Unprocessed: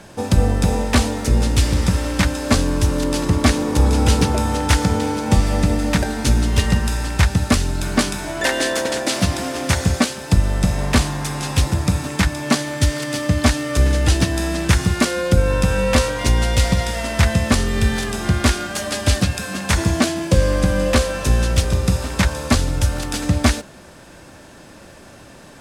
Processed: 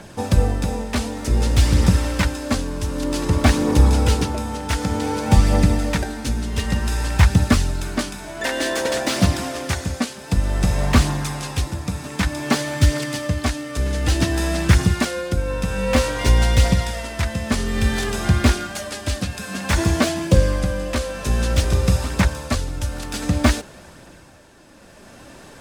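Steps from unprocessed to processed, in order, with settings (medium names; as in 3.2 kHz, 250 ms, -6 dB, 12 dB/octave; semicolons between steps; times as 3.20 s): tremolo 0.55 Hz, depth 57%; phaser 0.54 Hz, delay 5 ms, feedback 27%; slew-rate limiter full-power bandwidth 370 Hz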